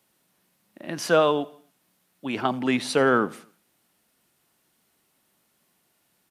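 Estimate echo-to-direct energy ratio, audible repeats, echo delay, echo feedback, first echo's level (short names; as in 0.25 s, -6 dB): -21.5 dB, 2, 86 ms, 47%, -22.5 dB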